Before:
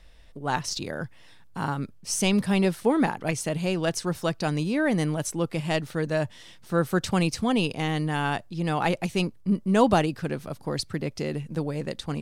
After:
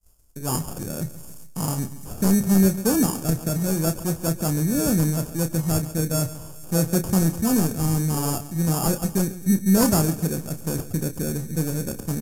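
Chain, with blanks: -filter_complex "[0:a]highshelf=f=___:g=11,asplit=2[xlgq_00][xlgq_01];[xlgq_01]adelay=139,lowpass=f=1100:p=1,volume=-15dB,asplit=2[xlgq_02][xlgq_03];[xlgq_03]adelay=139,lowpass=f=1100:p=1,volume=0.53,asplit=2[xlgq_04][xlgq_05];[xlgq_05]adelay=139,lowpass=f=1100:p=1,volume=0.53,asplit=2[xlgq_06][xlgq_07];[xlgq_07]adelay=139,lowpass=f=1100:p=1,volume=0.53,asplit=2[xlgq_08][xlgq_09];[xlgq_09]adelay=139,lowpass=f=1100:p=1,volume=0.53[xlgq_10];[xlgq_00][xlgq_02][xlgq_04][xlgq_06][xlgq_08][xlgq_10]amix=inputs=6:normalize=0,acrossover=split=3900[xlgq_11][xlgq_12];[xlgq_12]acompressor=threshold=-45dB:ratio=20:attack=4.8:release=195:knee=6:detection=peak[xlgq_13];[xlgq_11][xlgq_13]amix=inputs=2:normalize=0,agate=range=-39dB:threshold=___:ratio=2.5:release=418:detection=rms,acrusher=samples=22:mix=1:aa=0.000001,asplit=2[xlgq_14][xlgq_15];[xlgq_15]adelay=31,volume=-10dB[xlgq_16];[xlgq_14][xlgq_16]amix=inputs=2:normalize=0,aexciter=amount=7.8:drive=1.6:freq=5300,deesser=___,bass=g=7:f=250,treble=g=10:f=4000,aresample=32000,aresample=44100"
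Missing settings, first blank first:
8800, -41dB, 0.8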